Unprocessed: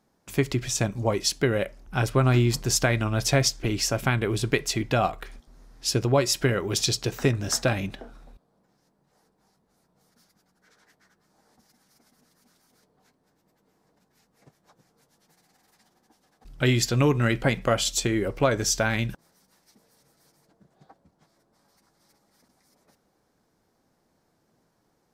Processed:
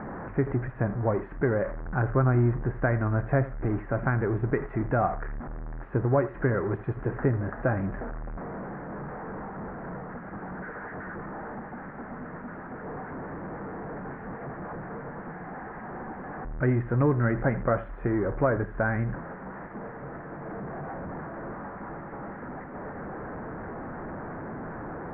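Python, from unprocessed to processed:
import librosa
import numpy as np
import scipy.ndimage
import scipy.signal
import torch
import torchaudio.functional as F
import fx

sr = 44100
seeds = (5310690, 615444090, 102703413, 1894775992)

y = x + 0.5 * 10.0 ** (-26.5 / 20.0) * np.sign(x)
y = scipy.signal.sosfilt(scipy.signal.butter(8, 1800.0, 'lowpass', fs=sr, output='sos'), y)
y = y + 10.0 ** (-16.5 / 20.0) * np.pad(y, (int(83 * sr / 1000.0), 0))[:len(y)]
y = y * librosa.db_to_amplitude(-3.5)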